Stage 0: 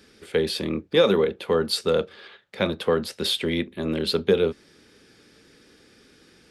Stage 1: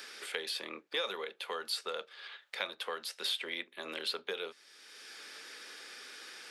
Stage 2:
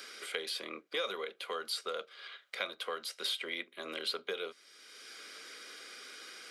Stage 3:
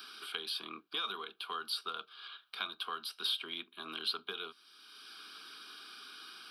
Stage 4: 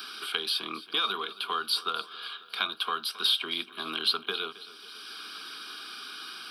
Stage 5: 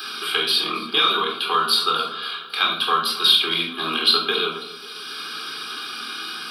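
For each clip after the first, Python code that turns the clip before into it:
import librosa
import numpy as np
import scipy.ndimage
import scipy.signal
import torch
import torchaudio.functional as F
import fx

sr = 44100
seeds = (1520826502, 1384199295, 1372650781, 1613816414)

y1 = scipy.signal.sosfilt(scipy.signal.butter(2, 910.0, 'highpass', fs=sr, output='sos'), x)
y1 = fx.band_squash(y1, sr, depth_pct=70)
y1 = F.gain(torch.from_numpy(y1), -7.0).numpy()
y2 = fx.notch_comb(y1, sr, f0_hz=880.0)
y2 = F.gain(torch.from_numpy(y2), 1.0).numpy()
y3 = fx.fixed_phaser(y2, sr, hz=2000.0, stages=6)
y3 = F.gain(torch.from_numpy(y3), 2.0).numpy()
y4 = fx.echo_feedback(y3, sr, ms=270, feedback_pct=58, wet_db=-18.0)
y4 = F.gain(torch.from_numpy(y4), 9.0).numpy()
y5 = fx.room_shoebox(y4, sr, seeds[0], volume_m3=920.0, walls='furnished', distance_m=3.9)
y5 = F.gain(torch.from_numpy(y5), 5.5).numpy()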